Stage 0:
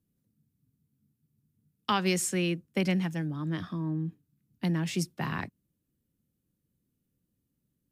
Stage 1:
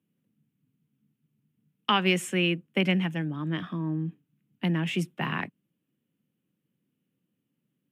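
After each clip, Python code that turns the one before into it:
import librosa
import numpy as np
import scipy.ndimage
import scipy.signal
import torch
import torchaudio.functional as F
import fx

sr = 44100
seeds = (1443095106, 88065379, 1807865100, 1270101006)

y = scipy.signal.sosfilt(scipy.signal.butter(4, 140.0, 'highpass', fs=sr, output='sos'), x)
y = fx.high_shelf_res(y, sr, hz=3700.0, db=-7.5, q=3.0)
y = F.gain(torch.from_numpy(y), 2.5).numpy()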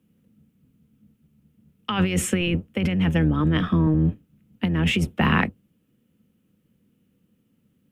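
y = fx.octave_divider(x, sr, octaves=1, level_db=-5.0)
y = fx.over_compress(y, sr, threshold_db=-29.0, ratio=-1.0)
y = fx.small_body(y, sr, hz=(210.0, 480.0, 1300.0), ring_ms=45, db=7)
y = F.gain(torch.from_numpy(y), 6.5).numpy()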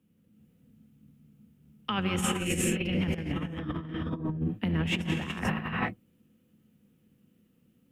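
y = fx.rev_gated(x, sr, seeds[0], gate_ms=460, shape='rising', drr_db=-3.0)
y = fx.over_compress(y, sr, threshold_db=-21.0, ratio=-0.5)
y = F.gain(torch.from_numpy(y), -8.5).numpy()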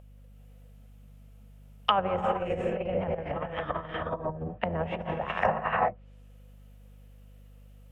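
y = fx.env_lowpass_down(x, sr, base_hz=810.0, full_db=-27.0)
y = fx.add_hum(y, sr, base_hz=50, snr_db=13)
y = fx.low_shelf_res(y, sr, hz=420.0, db=-12.5, q=3.0)
y = F.gain(torch.from_numpy(y), 8.5).numpy()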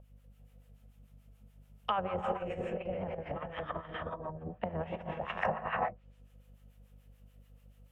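y = fx.harmonic_tremolo(x, sr, hz=6.9, depth_pct=70, crossover_hz=850.0)
y = F.gain(torch.from_numpy(y), -3.0).numpy()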